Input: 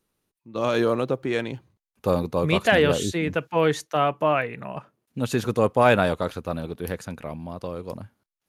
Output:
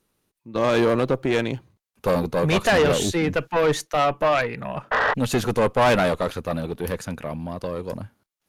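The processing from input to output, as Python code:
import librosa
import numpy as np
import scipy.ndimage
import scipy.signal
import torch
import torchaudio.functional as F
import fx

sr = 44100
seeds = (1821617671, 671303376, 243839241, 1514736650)

y = fx.spec_paint(x, sr, seeds[0], shape='noise', start_s=4.91, length_s=0.23, low_hz=420.0, high_hz=2000.0, level_db=-24.0)
y = fx.tube_stage(y, sr, drive_db=20.0, bias=0.45)
y = y * librosa.db_to_amplitude(6.5)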